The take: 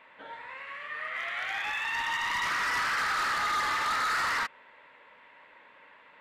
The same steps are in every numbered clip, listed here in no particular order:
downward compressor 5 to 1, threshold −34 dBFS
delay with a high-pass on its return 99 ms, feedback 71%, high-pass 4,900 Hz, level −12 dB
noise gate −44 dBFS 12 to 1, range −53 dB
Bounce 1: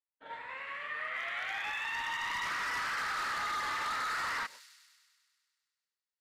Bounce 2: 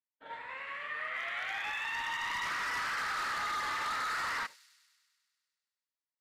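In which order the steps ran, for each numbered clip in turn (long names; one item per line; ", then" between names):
noise gate, then delay with a high-pass on its return, then downward compressor
downward compressor, then noise gate, then delay with a high-pass on its return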